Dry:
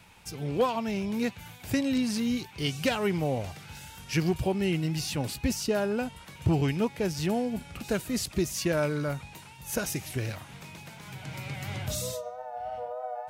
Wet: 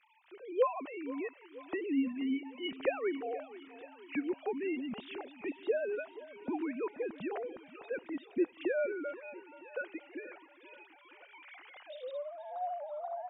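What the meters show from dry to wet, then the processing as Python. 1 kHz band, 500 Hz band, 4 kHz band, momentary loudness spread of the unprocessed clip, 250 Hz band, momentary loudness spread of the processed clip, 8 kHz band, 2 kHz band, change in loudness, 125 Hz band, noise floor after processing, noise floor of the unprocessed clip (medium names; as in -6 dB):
-6.0 dB, -4.5 dB, -14.0 dB, 14 LU, -8.0 dB, 19 LU, under -40 dB, -7.0 dB, -7.0 dB, -33.0 dB, -60 dBFS, -49 dBFS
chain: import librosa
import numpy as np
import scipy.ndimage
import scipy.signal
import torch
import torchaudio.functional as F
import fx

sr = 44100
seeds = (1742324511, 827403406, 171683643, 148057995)

y = fx.sine_speech(x, sr)
y = fx.echo_feedback(y, sr, ms=479, feedback_pct=58, wet_db=-17)
y = y * 10.0 ** (-7.5 / 20.0)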